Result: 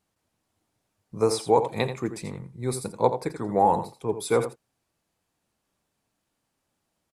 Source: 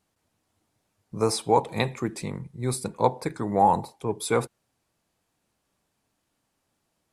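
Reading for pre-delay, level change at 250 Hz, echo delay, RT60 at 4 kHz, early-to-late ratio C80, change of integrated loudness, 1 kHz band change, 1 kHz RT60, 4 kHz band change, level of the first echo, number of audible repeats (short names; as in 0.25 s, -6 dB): none, -0.5 dB, 84 ms, none, none, +0.5 dB, -1.0 dB, none, -2.0 dB, -10.5 dB, 1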